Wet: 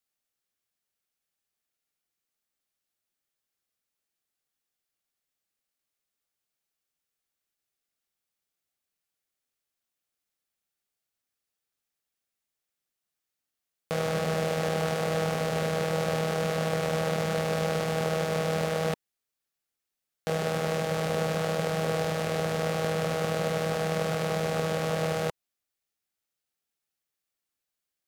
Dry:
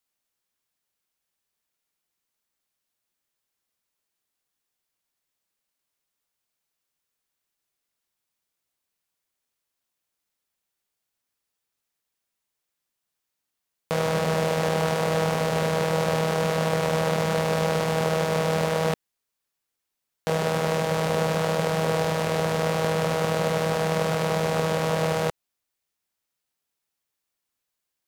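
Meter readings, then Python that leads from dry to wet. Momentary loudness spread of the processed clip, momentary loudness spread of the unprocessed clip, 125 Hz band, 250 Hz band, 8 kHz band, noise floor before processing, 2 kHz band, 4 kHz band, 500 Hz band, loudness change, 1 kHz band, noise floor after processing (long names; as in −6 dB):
2 LU, 2 LU, −4.0 dB, −4.0 dB, −4.0 dB, −83 dBFS, −4.0 dB, −4.0 dB, −4.0 dB, −4.0 dB, −5.5 dB, below −85 dBFS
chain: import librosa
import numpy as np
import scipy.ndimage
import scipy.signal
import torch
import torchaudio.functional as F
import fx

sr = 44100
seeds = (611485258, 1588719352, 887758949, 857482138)

y = fx.notch(x, sr, hz=980.0, q=7.4)
y = y * librosa.db_to_amplitude(-4.0)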